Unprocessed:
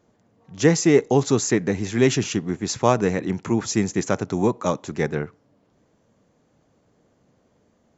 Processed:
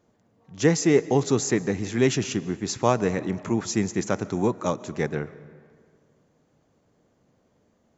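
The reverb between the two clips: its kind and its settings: algorithmic reverb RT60 2 s, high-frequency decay 0.6×, pre-delay 100 ms, DRR 17.5 dB; trim -3 dB

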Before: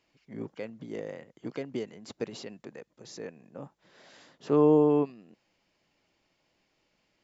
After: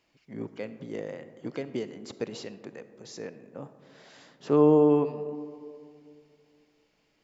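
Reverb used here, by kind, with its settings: algorithmic reverb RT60 2.4 s, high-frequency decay 0.3×, pre-delay 10 ms, DRR 12.5 dB; trim +1.5 dB

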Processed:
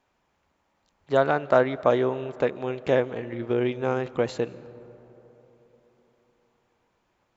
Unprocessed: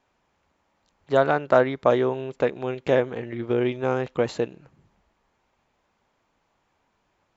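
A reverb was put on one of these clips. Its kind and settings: algorithmic reverb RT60 3.9 s, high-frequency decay 0.35×, pre-delay 115 ms, DRR 18.5 dB; trim -1.5 dB

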